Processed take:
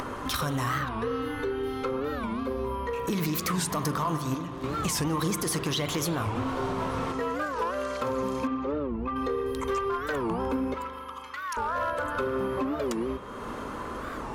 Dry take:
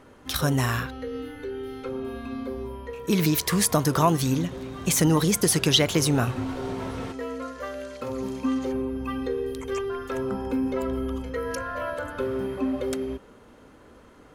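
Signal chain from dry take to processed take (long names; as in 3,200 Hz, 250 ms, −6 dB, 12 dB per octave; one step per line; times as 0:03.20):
0:04.04–0:04.64: noise gate −22 dBFS, range −11 dB
parametric band 1,100 Hz +10 dB 0.58 octaves
upward compression, threshold −32 dBFS
brickwall limiter −15.5 dBFS, peak gain reduction 11.5 dB
downward compressor 4 to 1, threshold −32 dBFS, peak gain reduction 10.5 dB
hard clipping −28 dBFS, distortion −21 dB
0:08.47–0:09.16: head-to-tape spacing loss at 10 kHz 30 dB
0:10.74–0:11.59: Chebyshev high-pass with heavy ripple 790 Hz, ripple 3 dB
spring reverb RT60 2.4 s, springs 40 ms, chirp 65 ms, DRR 7 dB
wow of a warped record 45 rpm, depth 250 cents
level +5 dB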